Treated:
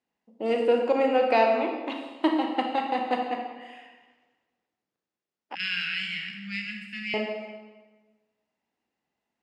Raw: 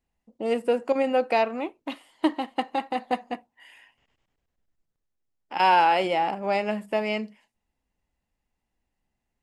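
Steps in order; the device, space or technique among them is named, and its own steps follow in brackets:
supermarket ceiling speaker (band-pass filter 240–5,700 Hz; convolution reverb RT60 1.3 s, pre-delay 28 ms, DRR 2 dB)
0:05.55–0:07.14: inverse Chebyshev band-stop filter 360–970 Hz, stop band 50 dB

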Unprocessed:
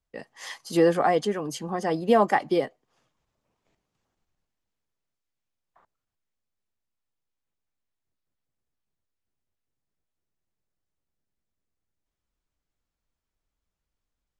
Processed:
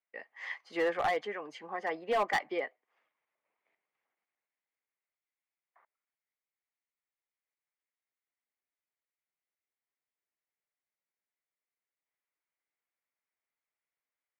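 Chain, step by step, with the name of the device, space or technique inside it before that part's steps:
megaphone (band-pass filter 530–2,500 Hz; parametric band 2,100 Hz +11.5 dB 0.48 octaves; hard clipping −18 dBFS, distortion −12 dB)
level −6 dB

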